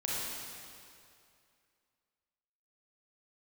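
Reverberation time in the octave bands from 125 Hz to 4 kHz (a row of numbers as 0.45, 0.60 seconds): 2.4, 2.3, 2.4, 2.4, 2.3, 2.1 seconds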